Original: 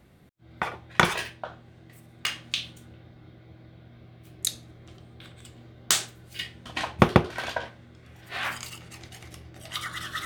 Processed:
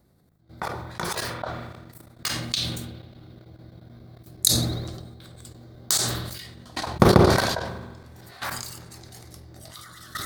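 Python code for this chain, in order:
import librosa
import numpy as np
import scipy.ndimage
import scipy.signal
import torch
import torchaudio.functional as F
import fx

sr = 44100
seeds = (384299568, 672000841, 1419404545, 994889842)

y = fx.peak_eq(x, sr, hz=4900.0, db=-10.0, octaves=2.1)
y = fx.rev_spring(y, sr, rt60_s=2.6, pass_ms=(38,), chirp_ms=50, drr_db=16.5)
y = fx.level_steps(y, sr, step_db=17)
y = fx.high_shelf_res(y, sr, hz=3500.0, db=7.5, q=3.0)
y = fx.sustainer(y, sr, db_per_s=40.0)
y = y * 10.0 ** (5.0 / 20.0)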